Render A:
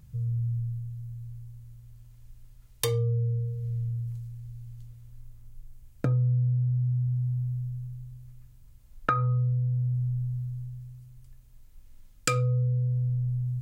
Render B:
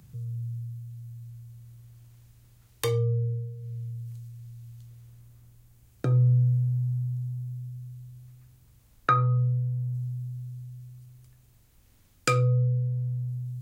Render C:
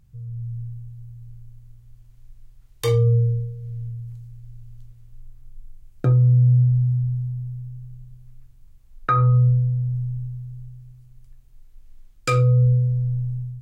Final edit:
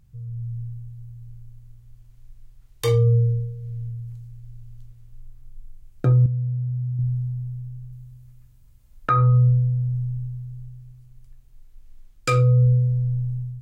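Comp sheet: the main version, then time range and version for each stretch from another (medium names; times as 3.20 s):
C
6.26–6.99 s: from A
7.92–9.10 s: from A
not used: B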